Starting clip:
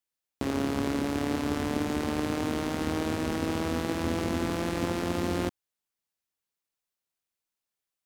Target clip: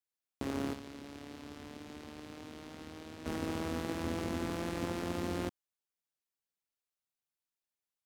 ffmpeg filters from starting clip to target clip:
ffmpeg -i in.wav -filter_complex "[0:a]asettb=1/sr,asplit=3[link_01][link_02][link_03];[link_01]atrim=end=0.734[link_04];[link_02]atrim=start=0.73:end=3.26,asetpts=PTS-STARTPTS,afade=type=in:duration=0.004:curve=qsin,afade=type=out:start_time=2.526:duration=0.004:curve=qsin,acrossover=split=2500|5600[link_05][link_06][link_07];[link_05]acompressor=threshold=-40dB:ratio=4[link_08];[link_06]acompressor=threshold=-49dB:ratio=4[link_09];[link_07]acompressor=threshold=-59dB:ratio=4[link_10];[link_08][link_09][link_10]amix=inputs=3:normalize=0[link_11];[link_03]atrim=start=3.256[link_12];[link_04][link_11]acrossfade=duration=0.004:curve1=hsin:curve2=qsin[link_13];[link_13][link_12]acrossfade=duration=0.004:curve1=qsin:curve2=hsin,volume=-7dB" out.wav

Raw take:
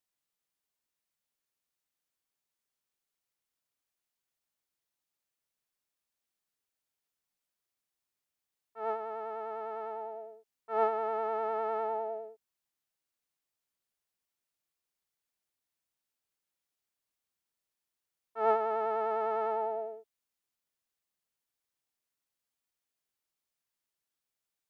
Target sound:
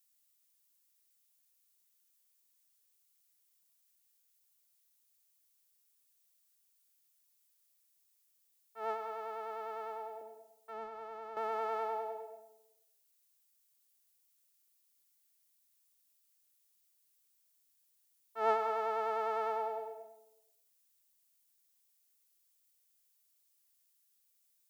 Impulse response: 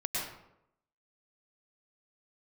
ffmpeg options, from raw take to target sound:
-filter_complex "[0:a]crystalizer=i=6:c=0,asettb=1/sr,asplit=3[link_01][link_02][link_03];[link_01]atrim=end=10.214[link_04];[link_02]atrim=start=10.21:end=11.37,asetpts=PTS-STARTPTS,afade=type=in:duration=0.004:curve=qsin,afade=type=out:start_time=1.156:duration=0.004:curve=qsin,acrossover=split=200[link_05][link_06];[link_06]acompressor=threshold=-42dB:ratio=3[link_07];[link_05][link_07]amix=inputs=2:normalize=0[link_08];[link_03]atrim=start=11.366[link_09];[link_04][link_08]acrossfade=duration=0.004:curve1=hsin:curve2=qsin[link_10];[link_10][link_09]acrossfade=duration=0.004:curve1=qsin:curve2=hsin,asplit=2[link_11][link_12];[1:a]atrim=start_sample=2205[link_13];[link_12][link_13]afir=irnorm=-1:irlink=0,volume=-11dB[link_14];[link_11][link_14]amix=inputs=2:normalize=0,volume=-7dB"

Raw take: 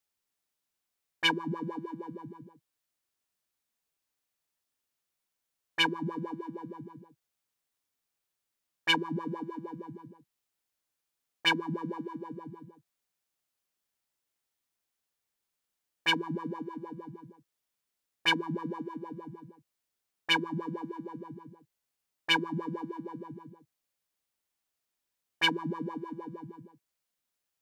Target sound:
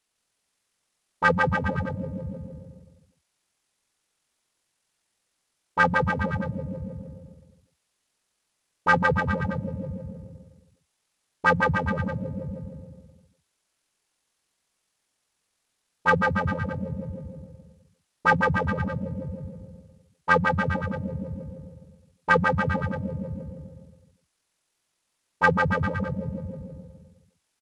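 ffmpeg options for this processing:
ffmpeg -i in.wav -af "aecho=1:1:150|285|406.5|515.8|614.3:0.631|0.398|0.251|0.158|0.1,acontrast=89,asetrate=23361,aresample=44100,atempo=1.88775" out.wav

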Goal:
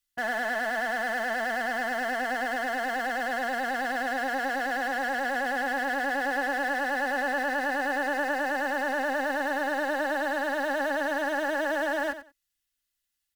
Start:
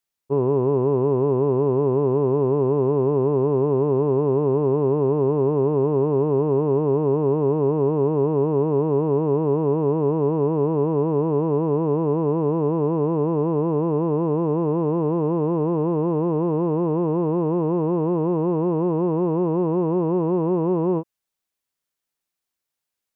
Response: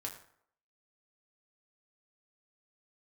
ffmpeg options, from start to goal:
-filter_complex "[0:a]asetrate=76440,aresample=44100,lowshelf=frequency=150:gain=9.5,asplit=2[link_01][link_02];[link_02]asoftclip=type=tanh:threshold=-25.5dB,volume=-5.5dB[link_03];[link_01][link_03]amix=inputs=2:normalize=0,equalizer=frequency=125:width_type=o:width=1:gain=-10,equalizer=frequency=250:width_type=o:width=1:gain=-5,equalizer=frequency=500:width_type=o:width=1:gain=-12,equalizer=frequency=1000:width_type=o:width=1:gain=-10,equalizer=frequency=2000:width_type=o:width=1:gain=4,acrossover=split=320|990[link_04][link_05][link_06];[link_04]aeval=exprs='(mod(106*val(0)+1,2)-1)/106':channel_layout=same[link_07];[link_07][link_05][link_06]amix=inputs=3:normalize=0,bandreject=frequency=2300:width=8.7,aecho=1:1:3.5:0.44,aecho=1:1:92|184:0.251|0.0427"

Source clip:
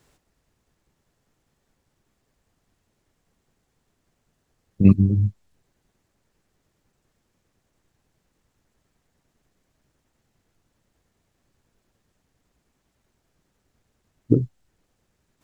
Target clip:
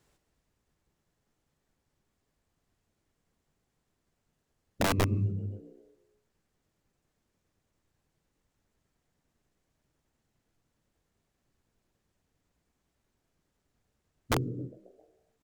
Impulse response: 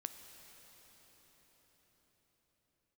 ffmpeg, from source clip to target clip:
-filter_complex "[0:a]asplit=6[link_01][link_02][link_03][link_04][link_05][link_06];[link_02]adelay=134,afreqshift=64,volume=-22.5dB[link_07];[link_03]adelay=268,afreqshift=128,volume=-26.4dB[link_08];[link_04]adelay=402,afreqshift=192,volume=-30.3dB[link_09];[link_05]adelay=536,afreqshift=256,volume=-34.1dB[link_10];[link_06]adelay=670,afreqshift=320,volume=-38dB[link_11];[link_01][link_07][link_08][link_09][link_10][link_11]amix=inputs=6:normalize=0[link_12];[1:a]atrim=start_sample=2205,afade=type=out:start_time=0.44:duration=0.01,atrim=end_sample=19845,asetrate=52920,aresample=44100[link_13];[link_12][link_13]afir=irnorm=-1:irlink=0,aeval=exprs='(mod(7.08*val(0)+1,2)-1)/7.08':channel_layout=same,volume=-2.5dB"

